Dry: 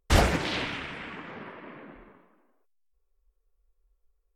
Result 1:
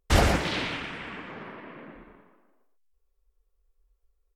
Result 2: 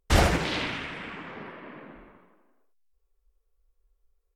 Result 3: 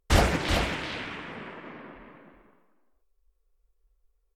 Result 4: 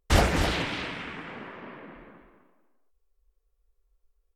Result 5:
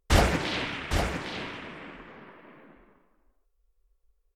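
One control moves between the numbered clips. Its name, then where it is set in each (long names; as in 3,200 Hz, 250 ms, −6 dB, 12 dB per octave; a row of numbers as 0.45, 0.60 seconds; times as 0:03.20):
single-tap delay, delay time: 117, 78, 382, 258, 808 milliseconds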